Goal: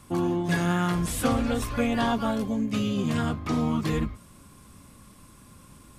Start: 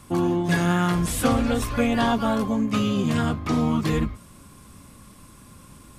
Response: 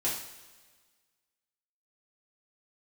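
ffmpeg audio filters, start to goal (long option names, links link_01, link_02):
-filter_complex "[0:a]asettb=1/sr,asplit=3[link_01][link_02][link_03];[link_01]atrim=end=2.314[link_04];[link_02]atrim=start=2.31:end=2.98,asetpts=PTS-STARTPTS,afade=type=in:duration=0.004:curve=qsin,afade=type=out:start_time=0.666:duration=0.004:curve=qsin,equalizer=frequency=1100:width=1.6:gain=-8.5[link_05];[link_03]atrim=start=2.976[link_06];[link_04][link_05]acrossfade=duration=0.004:curve1=hsin:curve2=qsin[link_07];[link_07][link_06]acrossfade=duration=0.004:curve1=qsin:curve2=hsin,volume=-3.5dB"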